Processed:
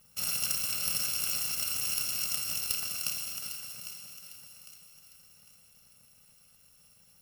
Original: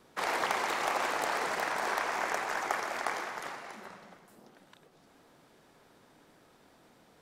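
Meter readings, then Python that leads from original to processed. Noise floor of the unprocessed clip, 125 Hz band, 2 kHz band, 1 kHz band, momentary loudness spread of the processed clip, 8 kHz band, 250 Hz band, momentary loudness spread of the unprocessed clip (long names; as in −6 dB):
−63 dBFS, +6.0 dB, −9.0 dB, −19.0 dB, 18 LU, +12.0 dB, −8.0 dB, 12 LU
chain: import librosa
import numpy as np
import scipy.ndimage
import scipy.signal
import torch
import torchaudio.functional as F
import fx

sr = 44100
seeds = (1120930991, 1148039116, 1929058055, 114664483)

y = fx.bit_reversed(x, sr, seeds[0], block=128)
y = fx.echo_thinned(y, sr, ms=803, feedback_pct=36, hz=420.0, wet_db=-11)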